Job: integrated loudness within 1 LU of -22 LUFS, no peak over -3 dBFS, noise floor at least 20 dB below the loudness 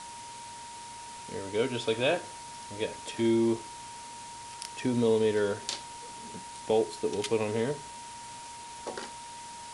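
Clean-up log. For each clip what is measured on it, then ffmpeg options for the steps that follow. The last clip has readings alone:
steady tone 940 Hz; tone level -43 dBFS; noise floor -44 dBFS; noise floor target -51 dBFS; loudness -31.0 LUFS; peak level -12.5 dBFS; loudness target -22.0 LUFS
-> -af "bandreject=f=940:w=30"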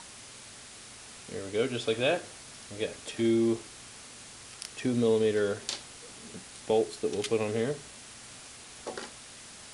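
steady tone not found; noise floor -48 dBFS; noise floor target -51 dBFS
-> -af "afftdn=nr=6:nf=-48"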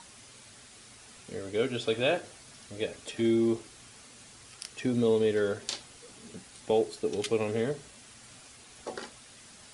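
noise floor -53 dBFS; loudness -30.0 LUFS; peak level -13.0 dBFS; loudness target -22.0 LUFS
-> -af "volume=2.51"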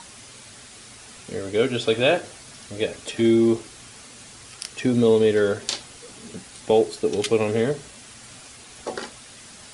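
loudness -22.0 LUFS; peak level -5.0 dBFS; noise floor -45 dBFS

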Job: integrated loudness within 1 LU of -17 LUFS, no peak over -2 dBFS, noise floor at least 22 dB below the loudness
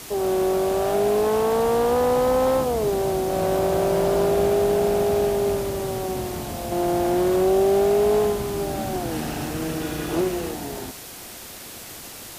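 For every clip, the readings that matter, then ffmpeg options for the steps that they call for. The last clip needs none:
noise floor -39 dBFS; noise floor target -44 dBFS; loudness -22.0 LUFS; peak level -9.5 dBFS; loudness target -17.0 LUFS
-> -af "afftdn=nr=6:nf=-39"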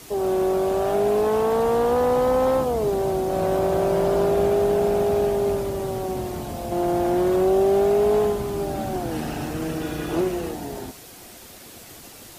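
noise floor -44 dBFS; loudness -22.0 LUFS; peak level -10.0 dBFS; loudness target -17.0 LUFS
-> -af "volume=1.78"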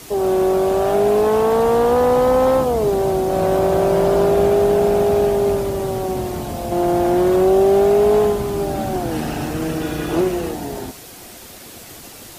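loudness -17.0 LUFS; peak level -4.5 dBFS; noise floor -39 dBFS

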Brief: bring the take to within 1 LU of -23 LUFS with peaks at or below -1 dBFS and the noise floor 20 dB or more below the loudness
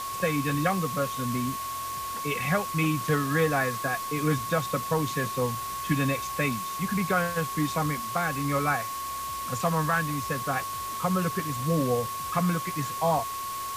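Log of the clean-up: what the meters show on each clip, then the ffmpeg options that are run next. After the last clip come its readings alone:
steady tone 1.1 kHz; tone level -32 dBFS; noise floor -34 dBFS; noise floor target -48 dBFS; loudness -28.0 LUFS; peak level -13.0 dBFS; loudness target -23.0 LUFS
-> -af "bandreject=f=1100:w=30"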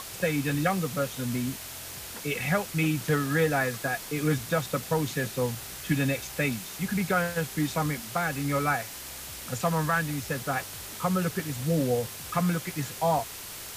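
steady tone not found; noise floor -41 dBFS; noise floor target -49 dBFS
-> -af "afftdn=nr=8:nf=-41"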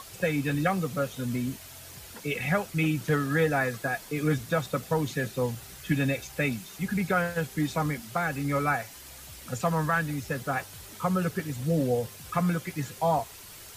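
noise floor -46 dBFS; noise floor target -49 dBFS
-> -af "afftdn=nr=6:nf=-46"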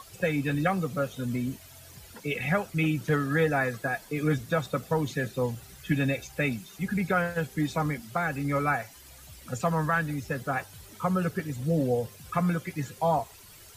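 noise floor -50 dBFS; loudness -29.0 LUFS; peak level -14.5 dBFS; loudness target -23.0 LUFS
-> -af "volume=2"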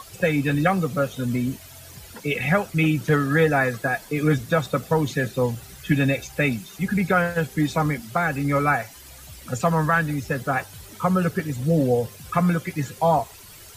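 loudness -23.0 LUFS; peak level -8.5 dBFS; noise floor -44 dBFS

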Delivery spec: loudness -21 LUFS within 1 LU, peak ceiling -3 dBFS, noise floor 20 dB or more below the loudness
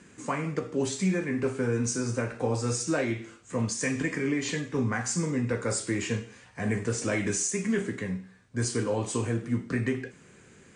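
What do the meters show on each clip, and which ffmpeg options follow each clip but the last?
loudness -29.5 LUFS; peak level -15.5 dBFS; loudness target -21.0 LUFS
-> -af "volume=2.66"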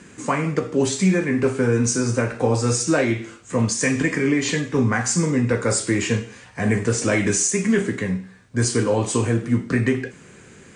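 loudness -21.0 LUFS; peak level -7.0 dBFS; noise floor -46 dBFS

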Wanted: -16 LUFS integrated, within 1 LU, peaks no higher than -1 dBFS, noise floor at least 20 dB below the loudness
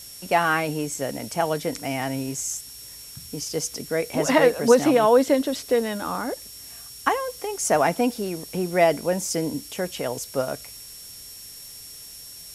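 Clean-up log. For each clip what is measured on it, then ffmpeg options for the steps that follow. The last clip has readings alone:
steady tone 5.5 kHz; tone level -44 dBFS; noise floor -42 dBFS; noise floor target -44 dBFS; loudness -23.5 LUFS; peak level -4.0 dBFS; loudness target -16.0 LUFS
-> -af "bandreject=f=5500:w=30"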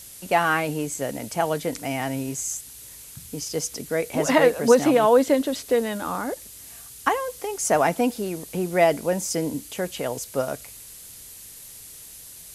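steady tone not found; noise floor -43 dBFS; noise floor target -44 dBFS
-> -af "afftdn=nr=6:nf=-43"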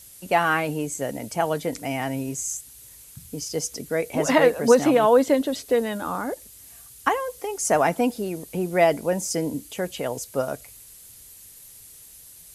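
noise floor -47 dBFS; loudness -23.5 LUFS; peak level -4.0 dBFS; loudness target -16.0 LUFS
-> -af "volume=2.37,alimiter=limit=0.891:level=0:latency=1"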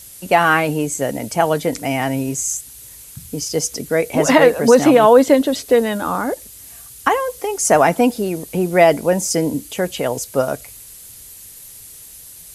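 loudness -16.5 LUFS; peak level -1.0 dBFS; noise floor -40 dBFS

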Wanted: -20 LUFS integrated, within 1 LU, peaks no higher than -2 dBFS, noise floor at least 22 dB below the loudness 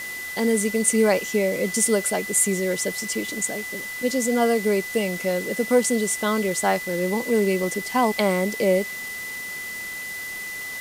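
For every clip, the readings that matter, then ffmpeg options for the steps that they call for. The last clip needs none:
steady tone 2 kHz; tone level -31 dBFS; noise floor -33 dBFS; noise floor target -45 dBFS; loudness -23.0 LUFS; peak level -5.5 dBFS; loudness target -20.0 LUFS
-> -af "bandreject=f=2000:w=30"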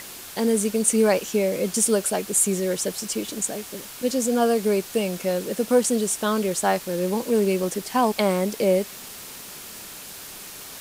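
steady tone not found; noise floor -40 dBFS; noise floor target -45 dBFS
-> -af "afftdn=nr=6:nf=-40"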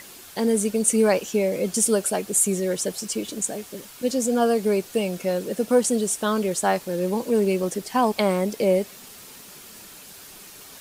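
noise floor -44 dBFS; noise floor target -45 dBFS
-> -af "afftdn=nr=6:nf=-44"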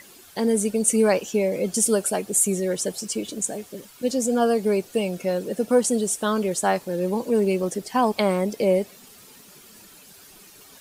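noise floor -49 dBFS; loudness -23.0 LUFS; peak level -6.0 dBFS; loudness target -20.0 LUFS
-> -af "volume=1.41"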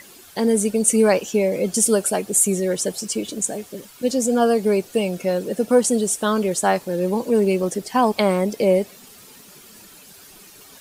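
loudness -20.0 LUFS; peak level -3.0 dBFS; noise floor -46 dBFS

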